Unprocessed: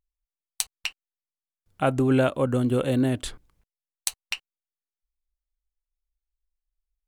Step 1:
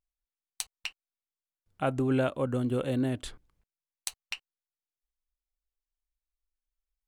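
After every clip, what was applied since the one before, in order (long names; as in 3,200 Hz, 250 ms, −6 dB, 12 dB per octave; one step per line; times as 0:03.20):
high-shelf EQ 7,800 Hz −4.5 dB
level −6 dB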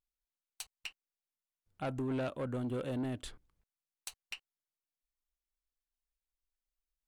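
soft clipping −26.5 dBFS, distortion −13 dB
level −4.5 dB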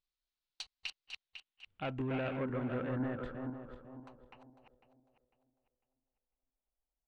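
feedback delay that plays each chunk backwards 250 ms, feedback 56%, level −5 dB
low-pass filter sweep 4,200 Hz → 730 Hz, 0:01.00–0:04.86
level −2 dB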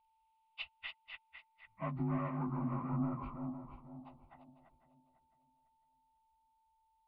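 partials spread apart or drawn together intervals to 85%
phaser with its sweep stopped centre 1,700 Hz, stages 6
steady tone 890 Hz −78 dBFS
level +5 dB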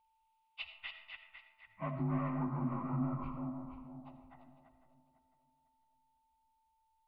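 comb and all-pass reverb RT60 0.95 s, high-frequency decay 0.4×, pre-delay 35 ms, DRR 8 dB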